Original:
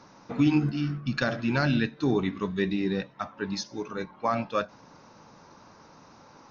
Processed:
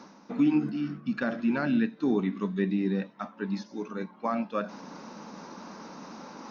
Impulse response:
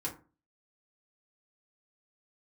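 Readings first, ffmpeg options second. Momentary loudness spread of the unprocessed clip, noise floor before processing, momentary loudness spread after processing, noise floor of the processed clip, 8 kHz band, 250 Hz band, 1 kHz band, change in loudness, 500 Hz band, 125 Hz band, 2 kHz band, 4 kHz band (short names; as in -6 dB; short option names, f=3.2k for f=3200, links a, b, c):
11 LU, -54 dBFS, 18 LU, -54 dBFS, n/a, +0.5 dB, -3.5 dB, -1.0 dB, -2.5 dB, -6.5 dB, -4.5 dB, -10.0 dB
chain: -filter_complex "[0:a]acrossover=split=2800[a][b];[b]acompressor=threshold=-51dB:ratio=4:attack=1:release=60[c];[a][c]amix=inputs=2:normalize=0,lowshelf=f=150:t=q:w=3:g=-10.5,areverse,acompressor=mode=upward:threshold=-28dB:ratio=2.5,areverse,volume=-4dB"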